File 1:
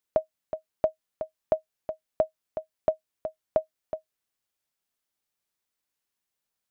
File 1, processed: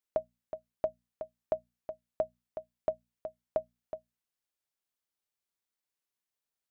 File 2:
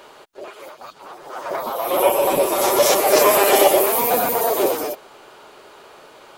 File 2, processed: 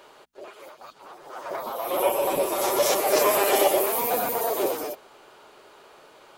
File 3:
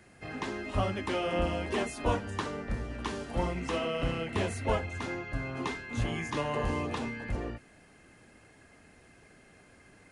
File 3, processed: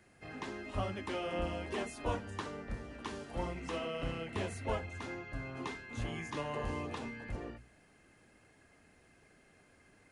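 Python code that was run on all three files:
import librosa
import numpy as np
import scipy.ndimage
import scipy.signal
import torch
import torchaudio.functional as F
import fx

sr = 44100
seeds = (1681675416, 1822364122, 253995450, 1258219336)

y = fx.hum_notches(x, sr, base_hz=60, count=4)
y = F.gain(torch.from_numpy(y), -6.5).numpy()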